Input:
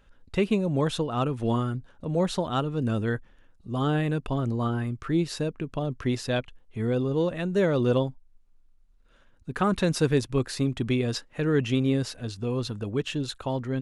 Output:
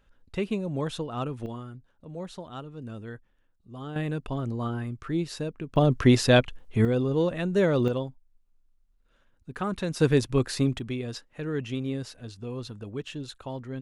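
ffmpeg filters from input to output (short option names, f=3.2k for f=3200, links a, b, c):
-af "asetnsamples=n=441:p=0,asendcmd='1.46 volume volume -12.5dB;3.96 volume volume -3.5dB;5.76 volume volume 8.5dB;6.85 volume volume 0.5dB;7.88 volume volume -6dB;10 volume volume 1.5dB;10.79 volume volume -7dB',volume=-5dB"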